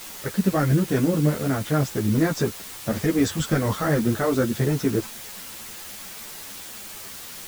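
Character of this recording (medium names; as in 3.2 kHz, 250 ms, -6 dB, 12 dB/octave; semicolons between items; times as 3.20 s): a quantiser's noise floor 6-bit, dither triangular; a shimmering, thickened sound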